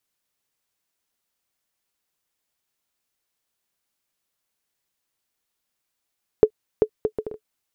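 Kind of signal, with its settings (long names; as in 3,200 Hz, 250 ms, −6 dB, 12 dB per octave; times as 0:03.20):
bouncing ball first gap 0.39 s, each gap 0.59, 431 Hz, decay 73 ms −2 dBFS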